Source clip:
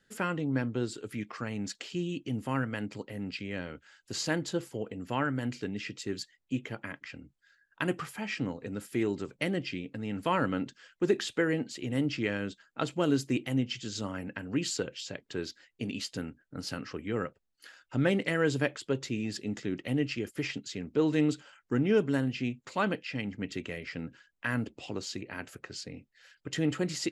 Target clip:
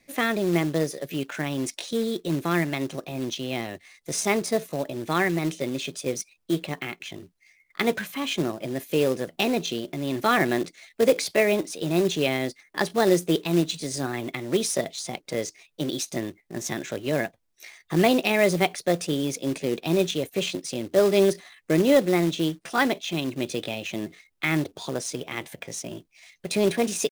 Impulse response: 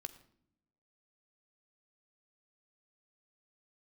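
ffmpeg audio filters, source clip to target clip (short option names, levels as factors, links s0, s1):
-af "asetrate=57191,aresample=44100,atempo=0.771105,acrusher=bits=4:mode=log:mix=0:aa=0.000001,volume=2.24"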